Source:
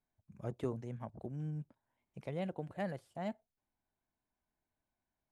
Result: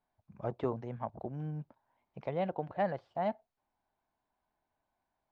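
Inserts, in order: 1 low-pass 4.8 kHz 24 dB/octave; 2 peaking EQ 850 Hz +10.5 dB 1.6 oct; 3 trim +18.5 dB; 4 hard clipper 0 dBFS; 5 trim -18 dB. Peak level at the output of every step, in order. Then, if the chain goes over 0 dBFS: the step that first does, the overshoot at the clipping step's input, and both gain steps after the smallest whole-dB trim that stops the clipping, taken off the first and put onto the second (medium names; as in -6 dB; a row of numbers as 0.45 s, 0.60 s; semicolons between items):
-24.5 dBFS, -20.5 dBFS, -2.0 dBFS, -2.0 dBFS, -20.0 dBFS; nothing clips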